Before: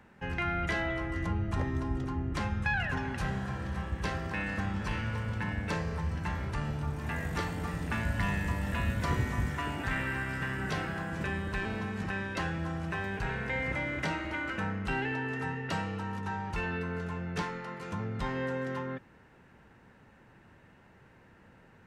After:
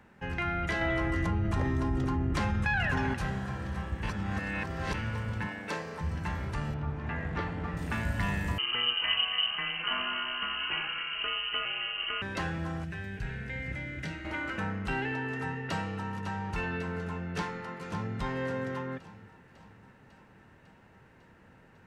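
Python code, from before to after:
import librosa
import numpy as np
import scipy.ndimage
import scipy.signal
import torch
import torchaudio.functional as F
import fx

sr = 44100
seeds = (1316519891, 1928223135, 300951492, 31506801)

y = fx.env_flatten(x, sr, amount_pct=70, at=(0.81, 3.14))
y = fx.highpass(y, sr, hz=260.0, slope=12, at=(5.47, 6.01))
y = fx.lowpass(y, sr, hz=2800.0, slope=12, at=(6.74, 7.77))
y = fx.freq_invert(y, sr, carrier_hz=3000, at=(8.58, 12.22))
y = fx.curve_eq(y, sr, hz=(120.0, 690.0, 1100.0, 1600.0), db=(0, -11, -17, -5), at=(12.84, 14.25))
y = fx.echo_throw(y, sr, start_s=15.42, length_s=0.64, ms=550, feedback_pct=75, wet_db=-11.5)
y = fx.echo_throw(y, sr, start_s=17.24, length_s=0.91, ms=560, feedback_pct=45, wet_db=-11.0)
y = fx.edit(y, sr, fx.reverse_span(start_s=4.03, length_s=0.91), tone=tone)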